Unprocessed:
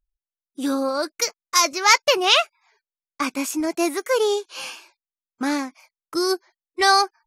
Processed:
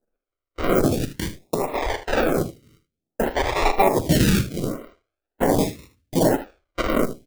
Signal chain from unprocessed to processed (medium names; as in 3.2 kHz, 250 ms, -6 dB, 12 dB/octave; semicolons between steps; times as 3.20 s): bit-reversed sample order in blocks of 256 samples; tone controls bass -5 dB, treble +7 dB; peak limiter -11.5 dBFS, peak gain reduction 15.5 dB; 0.86–2.12 s: compression 2.5:1, threshold -23 dBFS, peak gain reduction 4.5 dB; reverberation RT60 0.65 s, pre-delay 6 ms, DRR 7.5 dB; decimation with a swept rate 40×, swing 60% 0.47 Hz; early reflections 42 ms -15.5 dB, 77 ms -13.5 dB; lamp-driven phase shifter 0.64 Hz; trim +3.5 dB